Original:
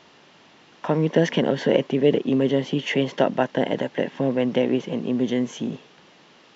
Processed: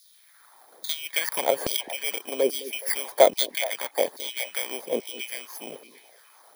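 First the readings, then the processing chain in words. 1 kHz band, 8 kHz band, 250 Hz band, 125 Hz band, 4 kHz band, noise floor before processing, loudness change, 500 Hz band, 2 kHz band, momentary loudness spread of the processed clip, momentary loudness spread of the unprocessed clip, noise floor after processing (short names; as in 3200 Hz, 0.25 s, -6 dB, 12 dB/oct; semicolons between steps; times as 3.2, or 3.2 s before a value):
-0.5 dB, n/a, -19.0 dB, under -25 dB, +3.0 dB, -53 dBFS, -3.0 dB, -4.0 dB, -0.5 dB, 15 LU, 7 LU, -57 dBFS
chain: FFT order left unsorted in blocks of 16 samples; LFO high-pass saw down 1.2 Hz 420–4700 Hz; on a send: delay with a stepping band-pass 0.21 s, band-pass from 300 Hz, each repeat 1.4 oct, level -11 dB; on the sum: harmonic-percussive split harmonic -9 dB; gain +1 dB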